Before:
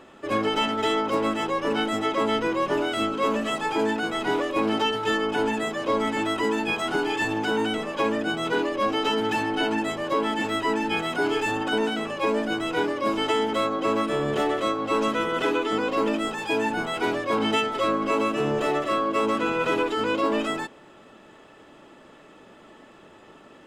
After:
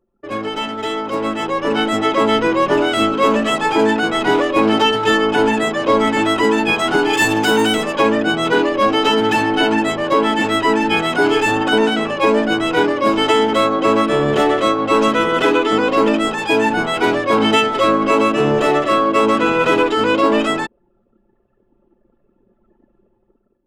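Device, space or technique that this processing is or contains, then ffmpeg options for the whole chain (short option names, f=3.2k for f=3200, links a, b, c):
voice memo with heavy noise removal: -filter_complex "[0:a]asettb=1/sr,asplit=3[a][b][c];[a]atrim=end=7.134[d];[b]atrim=start=7.13:end=7.93,asetpts=PTS-STARTPTS,afade=t=in:d=0.004:c=qsin,afade=t=out:st=0.796:d=0.004:c=qsin,aemphasis=mode=production:type=50kf[e];[c]atrim=start=7.926[f];[d][e]acrossfade=d=0.004:c1=hsin:c2=qsin[g];[g][f]acrossfade=d=0.004:c1=qsin:c2=hsin,anlmdn=2.51,dynaudnorm=f=1000:g=3:m=12dB"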